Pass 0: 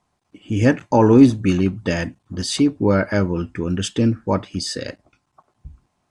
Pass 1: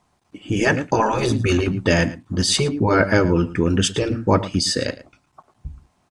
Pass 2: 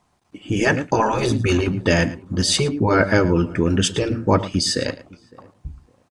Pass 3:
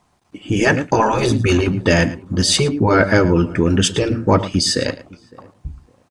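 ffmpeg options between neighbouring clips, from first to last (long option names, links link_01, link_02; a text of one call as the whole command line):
ffmpeg -i in.wav -filter_complex "[0:a]asplit=2[link_01][link_02];[link_02]adelay=110.8,volume=-17dB,highshelf=frequency=4000:gain=-2.49[link_03];[link_01][link_03]amix=inputs=2:normalize=0,afftfilt=real='re*lt(hypot(re,im),0.794)':imag='im*lt(hypot(re,im),0.794)':win_size=1024:overlap=0.75,volume=5.5dB" out.wav
ffmpeg -i in.wav -filter_complex "[0:a]asplit=2[link_01][link_02];[link_02]adelay=559,lowpass=frequency=990:poles=1,volume=-22.5dB,asplit=2[link_03][link_04];[link_04]adelay=559,lowpass=frequency=990:poles=1,volume=0.29[link_05];[link_01][link_03][link_05]amix=inputs=3:normalize=0" out.wav
ffmpeg -i in.wav -af "asoftclip=type=tanh:threshold=-3dB,volume=3.5dB" out.wav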